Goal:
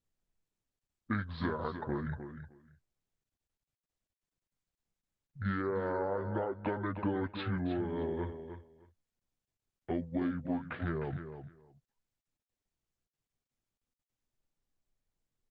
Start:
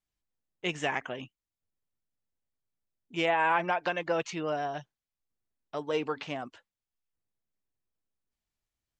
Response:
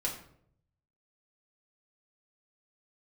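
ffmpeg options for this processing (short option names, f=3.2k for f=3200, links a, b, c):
-filter_complex "[0:a]anlmdn=0.0158,lowshelf=f=370:g=9,aecho=1:1:4.8:0.32,acompressor=threshold=-30dB:ratio=20,asetrate=25578,aresample=44100,asplit=2[a][b];[b]aecho=0:1:307|614:0.335|0.0569[c];[a][c]amix=inputs=2:normalize=0" -ar 48000 -c:a libopus -b:a 24k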